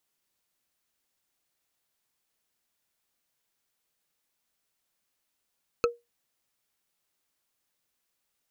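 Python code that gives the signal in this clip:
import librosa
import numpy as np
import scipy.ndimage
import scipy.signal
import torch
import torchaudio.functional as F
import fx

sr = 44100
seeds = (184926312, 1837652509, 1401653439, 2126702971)

y = fx.strike_wood(sr, length_s=0.45, level_db=-17, body='bar', hz=474.0, decay_s=0.2, tilt_db=3, modes=5)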